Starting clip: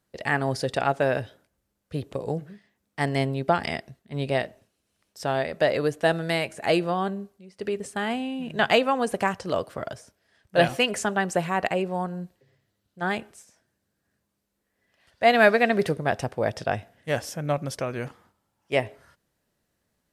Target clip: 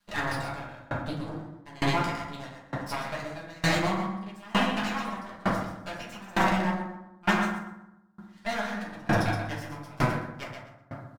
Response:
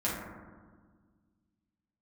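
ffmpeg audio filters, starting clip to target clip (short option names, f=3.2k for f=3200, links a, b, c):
-filter_complex "[0:a]equalizer=f=125:t=o:w=1:g=9,equalizer=f=500:t=o:w=1:g=-8,equalizer=f=1k:t=o:w=1:g=9,equalizer=f=4k:t=o:w=1:g=10,aeval=exprs='max(val(0),0)':c=same,lowshelf=f=430:g=-7,aecho=1:1:224|448|672|896:0.562|0.169|0.0506|0.0152,atempo=1.8,alimiter=limit=-17dB:level=0:latency=1:release=166[a];[1:a]atrim=start_sample=2205[b];[a][b]afir=irnorm=-1:irlink=0,aeval=exprs='val(0)*pow(10,-26*if(lt(mod(1.1*n/s,1),2*abs(1.1)/1000),1-mod(1.1*n/s,1)/(2*abs(1.1)/1000),(mod(1.1*n/s,1)-2*abs(1.1)/1000)/(1-2*abs(1.1)/1000))/20)':c=same,volume=3dB"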